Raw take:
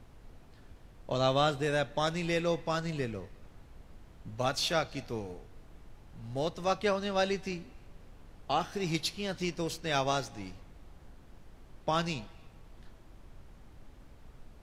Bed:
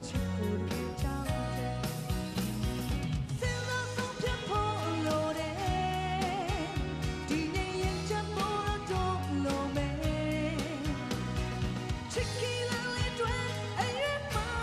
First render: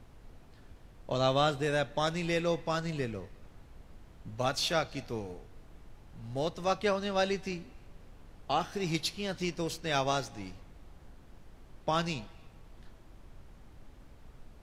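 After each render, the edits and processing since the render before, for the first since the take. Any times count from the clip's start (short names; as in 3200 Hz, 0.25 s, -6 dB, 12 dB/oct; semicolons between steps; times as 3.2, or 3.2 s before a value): nothing audible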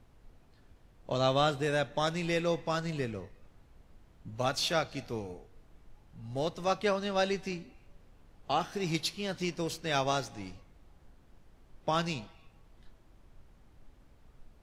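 noise print and reduce 6 dB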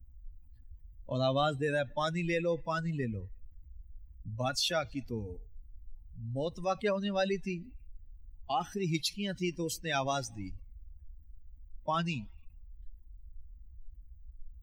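per-bin expansion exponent 2; fast leveller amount 50%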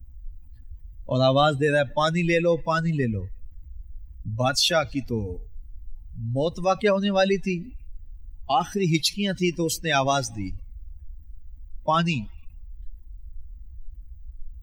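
gain +10 dB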